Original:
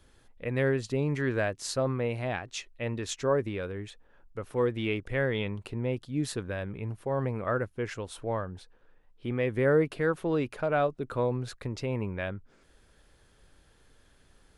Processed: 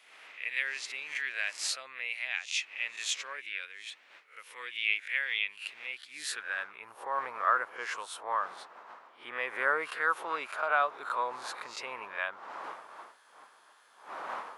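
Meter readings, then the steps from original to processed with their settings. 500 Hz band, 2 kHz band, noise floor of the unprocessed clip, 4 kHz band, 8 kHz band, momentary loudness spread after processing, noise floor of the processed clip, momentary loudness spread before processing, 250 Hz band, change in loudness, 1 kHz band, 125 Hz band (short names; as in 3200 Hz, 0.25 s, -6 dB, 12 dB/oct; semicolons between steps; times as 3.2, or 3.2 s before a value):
-13.0 dB, +5.0 dB, -62 dBFS, +5.0 dB, +2.5 dB, 17 LU, -61 dBFS, 10 LU, -24.5 dB, -2.5 dB, +4.0 dB, under -35 dB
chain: spectral swells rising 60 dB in 0.33 s; wind noise 480 Hz -42 dBFS; high-pass sweep 2300 Hz -> 1100 Hz, 5.85–6.96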